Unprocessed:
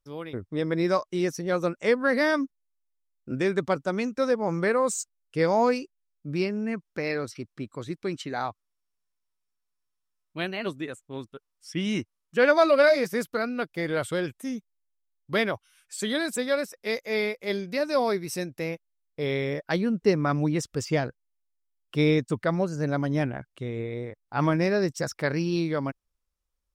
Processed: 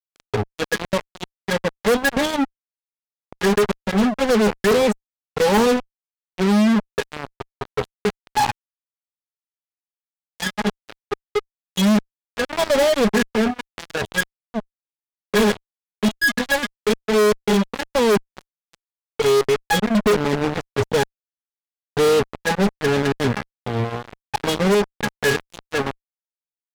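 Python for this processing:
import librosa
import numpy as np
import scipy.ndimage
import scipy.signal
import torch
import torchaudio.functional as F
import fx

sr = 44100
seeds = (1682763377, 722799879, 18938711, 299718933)

y = fx.env_flanger(x, sr, rest_ms=3.2, full_db=-19.0)
y = fx.peak_eq(y, sr, hz=98.0, db=-6.5, octaves=2.8)
y = fx.octave_resonator(y, sr, note='G#', decay_s=0.15)
y = fx.step_gate(y, sr, bpm=194, pattern='..xxxxxxxxx.xxxx', floor_db=-12.0, edge_ms=4.5)
y = fx.fuzz(y, sr, gain_db=54.0, gate_db=-49.0)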